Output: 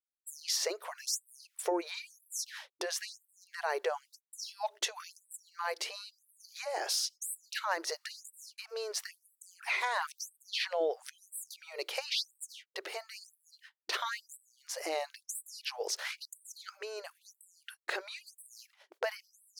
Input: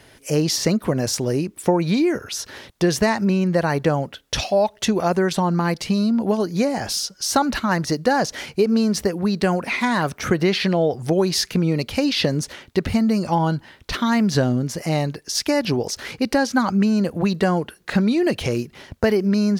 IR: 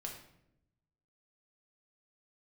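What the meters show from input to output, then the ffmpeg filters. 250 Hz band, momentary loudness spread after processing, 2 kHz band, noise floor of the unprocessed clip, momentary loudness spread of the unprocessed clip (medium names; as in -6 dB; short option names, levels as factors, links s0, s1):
-32.5 dB, 17 LU, -12.0 dB, -53 dBFS, 6 LU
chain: -af "acompressor=threshold=0.0562:ratio=2,agate=range=0.00398:threshold=0.0126:ratio=16:detection=peak,afftfilt=real='re*gte(b*sr/1024,320*pow(7800/320,0.5+0.5*sin(2*PI*0.99*pts/sr)))':imag='im*gte(b*sr/1024,320*pow(7800/320,0.5+0.5*sin(2*PI*0.99*pts/sr)))':win_size=1024:overlap=0.75,volume=0.562"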